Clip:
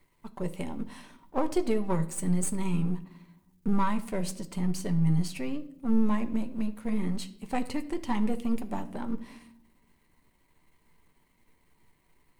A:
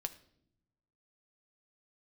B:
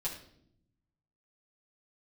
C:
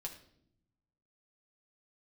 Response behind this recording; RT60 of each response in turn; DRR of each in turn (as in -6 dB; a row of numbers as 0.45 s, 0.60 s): A; no single decay rate, 0.70 s, 0.70 s; 7.5 dB, -6.5 dB, 0.0 dB